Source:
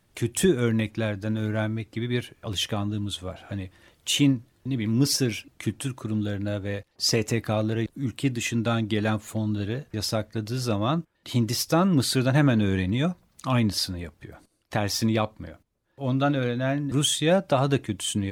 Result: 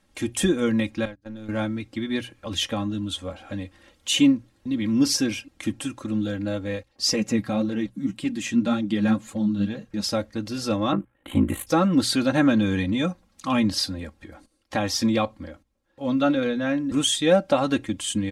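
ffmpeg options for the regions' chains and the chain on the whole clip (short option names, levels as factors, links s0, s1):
-filter_complex "[0:a]asettb=1/sr,asplit=3[s0][s1][s2];[s0]atrim=end=1.054[s3];[s1]atrim=start=1.05:end=1.49,asetpts=PTS-STARTPTS,afade=t=in:d=0.004:c=qsin,afade=t=out:st=0.436:d=0.004:c=qsin,aeval=exprs='if(lt(val(0),0),0.708*val(0),val(0))':c=same,agate=range=0.0251:threshold=0.0355:ratio=16:release=100:detection=peak,acompressor=threshold=0.02:ratio=5:attack=3.2:release=140:knee=1:detection=peak[s4];[s2]atrim=start=1.486[s5];[s3][s4]acrossfade=d=0.004:c1=hsin:c2=qsin[s6];[s6][s5]acrossfade=d=0.004:c1=qsin:c2=hsin,asettb=1/sr,asplit=3[s7][s8][s9];[s7]atrim=end=7.134[s10];[s8]atrim=start=7.13:end=10.04,asetpts=PTS-STARTPTS,afade=t=in:d=0.004:c=qsin,afade=t=out:st=2.906:d=0.004:c=qsin,equalizer=f=190:t=o:w=0.45:g=13.5,flanger=delay=1.6:depth=8.8:regen=34:speed=1.8:shape=triangular[s11];[s9]atrim=start=10.036[s12];[s10][s11]acrossfade=d=0.004:c1=hsin:c2=qsin[s13];[s13][s12]acrossfade=d=0.004:c1=qsin:c2=hsin,asettb=1/sr,asplit=3[s14][s15][s16];[s14]atrim=end=10.924[s17];[s15]atrim=start=10.92:end=11.67,asetpts=PTS-STARTPTS,afade=t=in:d=0.004:c=qsin,afade=t=out:st=0.746:d=0.004:c=qsin,acontrast=30,aeval=exprs='val(0)*sin(2*PI*27*n/s)':c=same,asuperstop=centerf=5200:order=4:qfactor=0.75[s18];[s16]atrim=start=11.666[s19];[s17][s18]acrossfade=d=0.004:c1=hsin:c2=qsin[s20];[s20][s19]acrossfade=d=0.004:c1=qsin:c2=hsin,lowpass=10000,bandreject=f=60:t=h:w=6,bandreject=f=120:t=h:w=6,aecho=1:1:3.7:0.7"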